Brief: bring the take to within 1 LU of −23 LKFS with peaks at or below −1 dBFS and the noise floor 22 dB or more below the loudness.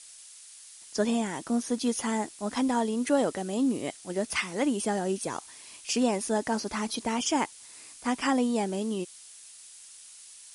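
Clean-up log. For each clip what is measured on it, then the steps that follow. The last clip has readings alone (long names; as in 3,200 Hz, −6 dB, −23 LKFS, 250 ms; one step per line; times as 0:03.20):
background noise floor −50 dBFS; target noise floor −51 dBFS; integrated loudness −29.0 LKFS; sample peak −13.0 dBFS; target loudness −23.0 LKFS
→ broadband denoise 6 dB, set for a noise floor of −50 dBFS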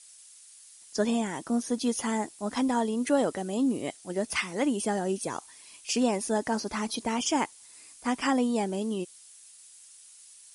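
background noise floor −53 dBFS; integrated loudness −29.5 LKFS; sample peak −13.0 dBFS; target loudness −23.0 LKFS
→ level +6.5 dB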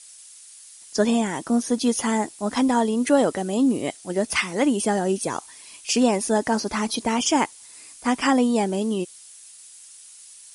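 integrated loudness −23.0 LKFS; sample peak −7.0 dBFS; background noise floor −46 dBFS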